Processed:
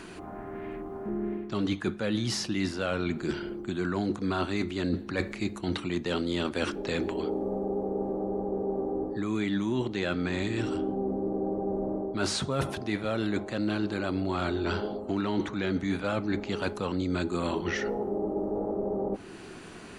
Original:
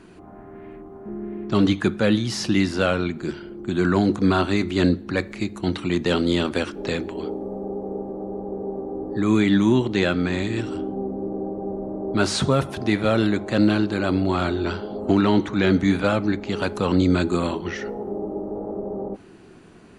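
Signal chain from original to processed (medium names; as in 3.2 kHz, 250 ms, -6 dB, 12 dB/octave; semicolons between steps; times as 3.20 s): peaking EQ 140 Hz -2 dB 2.4 oct; reverse; compression 6:1, threshold -29 dBFS, peak gain reduction 14 dB; reverse; tape noise reduction on one side only encoder only; trim +2.5 dB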